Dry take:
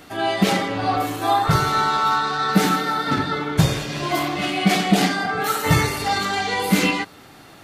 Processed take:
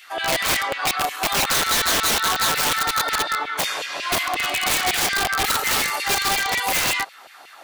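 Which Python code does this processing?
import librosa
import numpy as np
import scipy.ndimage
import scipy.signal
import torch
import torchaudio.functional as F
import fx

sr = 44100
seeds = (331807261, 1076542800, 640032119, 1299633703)

y = fx.filter_lfo_highpass(x, sr, shape='saw_down', hz=5.5, low_hz=520.0, high_hz=2700.0, q=2.2)
y = (np.mod(10.0 ** (14.5 / 20.0) * y + 1.0, 2.0) - 1.0) / 10.0 ** (14.5 / 20.0)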